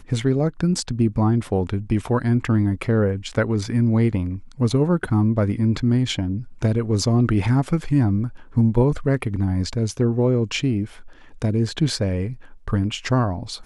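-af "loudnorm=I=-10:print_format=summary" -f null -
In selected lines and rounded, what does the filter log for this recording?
Input Integrated:    -21.8 LUFS
Input True Peak:      -6.7 dBTP
Input LRA:             3.8 LU
Input Threshold:     -32.1 LUFS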